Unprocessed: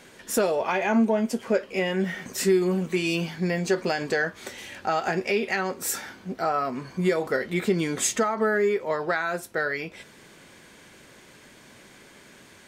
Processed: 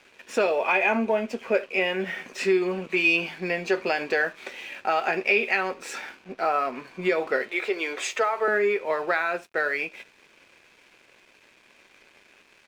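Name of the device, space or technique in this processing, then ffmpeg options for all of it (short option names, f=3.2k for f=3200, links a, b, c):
pocket radio on a weak battery: -filter_complex "[0:a]asettb=1/sr,asplit=3[a][b][c];[a]atrim=end=7.484[d];[b]atrim=start=7.48:end=8.48,asetpts=PTS-STARTPTS,afade=t=in:d=0.004:c=qsin,afade=t=out:st=0.996:d=0.004:c=qsin,highpass=f=370:w=0.5412,highpass=f=370:w=1.3066[e];[c]atrim=start=8.476[f];[d][e]acrossfade=d=0.004:c1=hsin:c2=qsin[g];[g][f]acrossfade=d=0.004:c1=qsin:c2=hsin,highpass=340,lowpass=4k,aecho=1:1:74:0.0841,aeval=exprs='sgn(val(0))*max(abs(val(0))-0.00211,0)':c=same,equalizer=f=2.5k:t=o:w=0.24:g=11,volume=1.5dB"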